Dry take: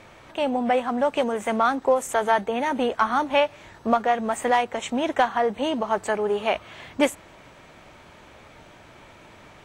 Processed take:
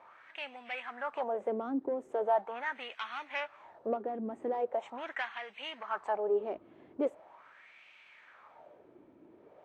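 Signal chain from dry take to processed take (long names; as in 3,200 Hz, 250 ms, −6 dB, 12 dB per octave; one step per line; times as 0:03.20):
soft clipping −15 dBFS, distortion −15 dB
LFO wah 0.41 Hz 300–2,600 Hz, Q 3.5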